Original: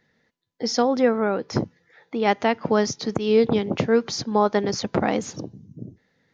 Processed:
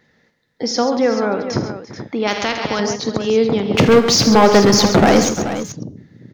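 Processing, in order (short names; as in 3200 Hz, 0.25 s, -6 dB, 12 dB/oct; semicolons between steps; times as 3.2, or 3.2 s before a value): vibrato 4.9 Hz 27 cents; in parallel at +2 dB: compressor, threshold -32 dBFS, peak gain reduction 17.5 dB; on the sum: de-hum 415.6 Hz, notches 32; 3.74–5.29 sample leveller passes 3; on a send: tapped delay 49/80/134/343/433 ms -13.5/-14/-10.5/-17/-11.5 dB; 2.27–2.8 on the sum: spectral compressor 2:1; gain +1 dB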